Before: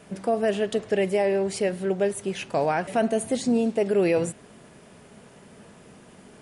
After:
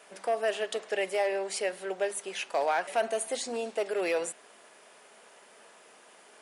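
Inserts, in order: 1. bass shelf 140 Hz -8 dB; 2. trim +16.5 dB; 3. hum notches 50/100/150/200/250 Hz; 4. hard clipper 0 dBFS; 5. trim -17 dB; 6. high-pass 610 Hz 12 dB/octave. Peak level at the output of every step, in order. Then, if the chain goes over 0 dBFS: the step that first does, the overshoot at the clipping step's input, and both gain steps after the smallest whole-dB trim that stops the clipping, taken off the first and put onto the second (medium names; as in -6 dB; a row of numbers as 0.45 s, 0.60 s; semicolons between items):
-13.0 dBFS, +3.5 dBFS, +4.0 dBFS, 0.0 dBFS, -17.0 dBFS, -16.0 dBFS; step 2, 4.0 dB; step 2 +12.5 dB, step 5 -13 dB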